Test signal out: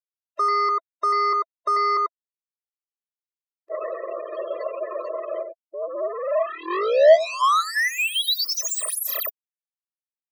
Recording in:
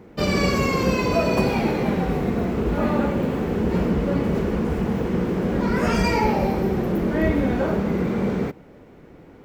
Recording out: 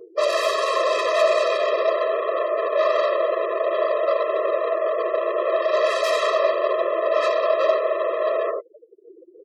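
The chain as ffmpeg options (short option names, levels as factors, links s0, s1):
-af "afftdn=nr=25:nf=-33,aeval=exprs='0.0944*(abs(mod(val(0)/0.0944+3,4)-2)-1)':c=same,aecho=1:1:91:0.398,volume=50.1,asoftclip=hard,volume=0.02,acontrast=81,afftfilt=real='re*gte(hypot(re,im),0.00891)':imag='im*gte(hypot(re,im),0.00891)':win_size=1024:overlap=0.75,highpass=f=680:t=q:w=5.9,equalizer=f=9800:t=o:w=2.8:g=-4.5,acompressor=mode=upward:threshold=0.00794:ratio=2.5,adynamicequalizer=threshold=0.00355:dfrequency=3800:dqfactor=3.6:tfrequency=3800:tqfactor=3.6:attack=5:release=100:ratio=0.375:range=2:mode=boostabove:tftype=bell,afftfilt=real='re*eq(mod(floor(b*sr/1024/340),2),1)':imag='im*eq(mod(floor(b*sr/1024/340),2),1)':win_size=1024:overlap=0.75,volume=2.37"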